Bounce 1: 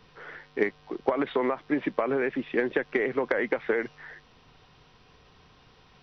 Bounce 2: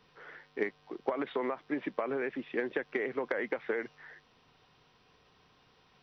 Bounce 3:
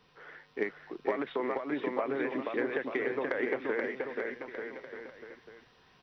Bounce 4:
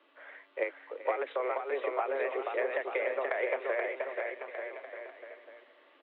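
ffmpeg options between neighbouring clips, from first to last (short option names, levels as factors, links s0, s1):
-af "lowshelf=f=92:g=-11,volume=0.473"
-af "aecho=1:1:480|888|1235|1530|1780:0.631|0.398|0.251|0.158|0.1"
-af "aecho=1:1:386|772|1158|1544:0.141|0.0607|0.0261|0.0112,highpass=f=150:t=q:w=0.5412,highpass=f=150:t=q:w=1.307,lowpass=f=3300:t=q:w=0.5176,lowpass=f=3300:t=q:w=0.7071,lowpass=f=3300:t=q:w=1.932,afreqshift=130"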